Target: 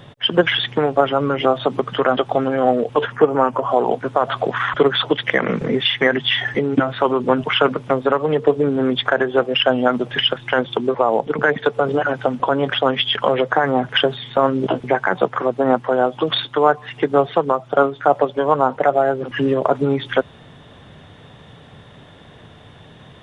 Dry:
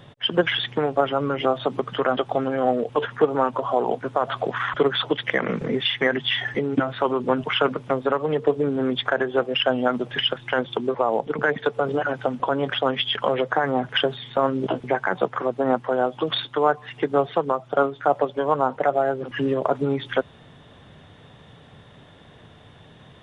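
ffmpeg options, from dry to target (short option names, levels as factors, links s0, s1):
-filter_complex "[0:a]asettb=1/sr,asplit=3[s0][s1][s2];[s0]atrim=end=3.124[s3];[s1]atrim=start=3.12:end=3.7,asetpts=PTS-STARTPTS,afade=t=in:d=0.004:c=qsin,afade=t=out:st=0.576:d=0.004:c=qsin,equalizer=f=3800:w=5.1:g=-14.5[s4];[s2]atrim=start=3.696[s5];[s3][s4]acrossfade=d=0.004:c1=hsin:c2=qsin[s6];[s6][s5]acrossfade=d=0.004:c1=qsin:c2=hsin,volume=1.78"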